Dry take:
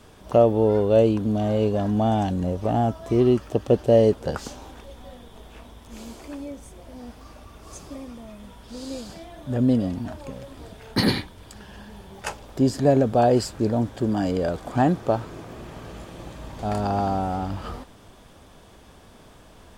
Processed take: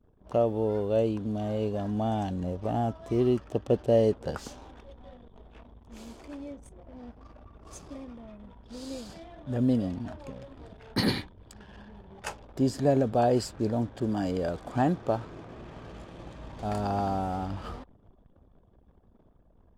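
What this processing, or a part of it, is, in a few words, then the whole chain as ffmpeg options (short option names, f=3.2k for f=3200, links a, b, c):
voice memo with heavy noise removal: -af "anlmdn=0.0398,dynaudnorm=f=890:g=5:m=4dB,volume=-8.5dB"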